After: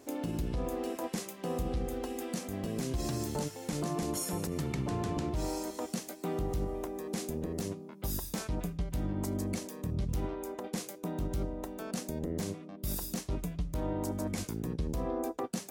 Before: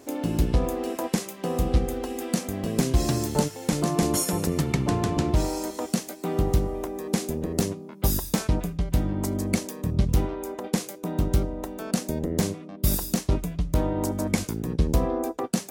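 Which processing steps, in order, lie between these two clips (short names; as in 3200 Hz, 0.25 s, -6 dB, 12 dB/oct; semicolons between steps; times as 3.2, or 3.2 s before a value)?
limiter -19 dBFS, peak gain reduction 9.5 dB; gain -6 dB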